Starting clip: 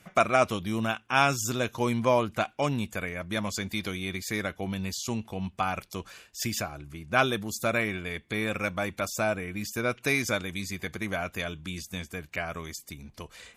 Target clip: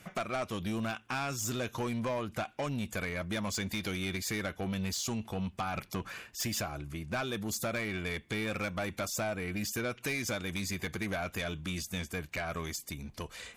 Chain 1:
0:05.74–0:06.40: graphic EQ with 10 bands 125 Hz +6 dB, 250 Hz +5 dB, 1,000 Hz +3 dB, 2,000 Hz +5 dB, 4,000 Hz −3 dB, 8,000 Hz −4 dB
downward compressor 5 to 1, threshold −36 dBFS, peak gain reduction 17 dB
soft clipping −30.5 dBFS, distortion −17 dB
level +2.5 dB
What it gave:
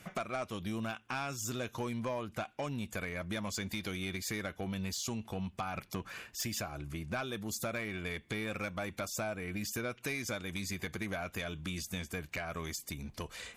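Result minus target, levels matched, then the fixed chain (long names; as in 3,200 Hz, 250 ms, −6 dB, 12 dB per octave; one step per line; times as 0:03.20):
downward compressor: peak gain reduction +5 dB
0:05.74–0:06.40: graphic EQ with 10 bands 125 Hz +6 dB, 250 Hz +5 dB, 1,000 Hz +3 dB, 2,000 Hz +5 dB, 4,000 Hz −3 dB, 8,000 Hz −4 dB
downward compressor 5 to 1, threshold −30 dBFS, peak gain reduction 12.5 dB
soft clipping −30.5 dBFS, distortion −12 dB
level +2.5 dB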